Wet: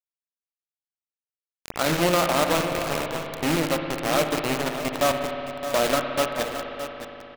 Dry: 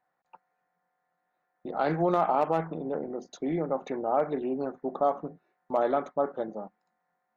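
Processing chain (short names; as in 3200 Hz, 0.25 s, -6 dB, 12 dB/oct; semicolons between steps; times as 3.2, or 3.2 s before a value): rattling part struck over -38 dBFS, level -30 dBFS; thirty-one-band EQ 400 Hz -9 dB, 800 Hz -12 dB, 2500 Hz -3 dB, 4000 Hz +10 dB; bit-crush 5-bit; on a send: echo 0.618 s -8 dB; on the sum: power-law curve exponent 1.4; spring tank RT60 3.4 s, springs 58 ms, chirp 60 ms, DRR 4.5 dB; gain +8.5 dB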